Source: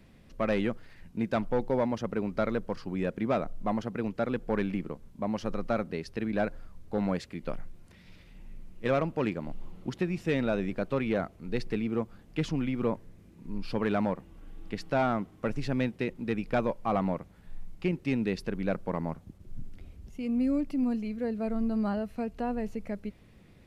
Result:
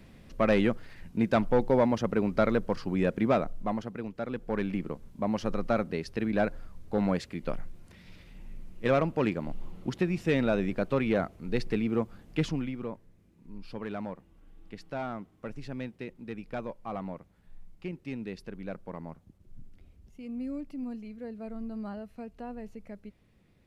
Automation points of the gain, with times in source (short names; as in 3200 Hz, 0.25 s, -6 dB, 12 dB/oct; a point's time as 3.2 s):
3.24 s +4 dB
4.12 s -6 dB
4.93 s +2 dB
12.42 s +2 dB
12.88 s -8.5 dB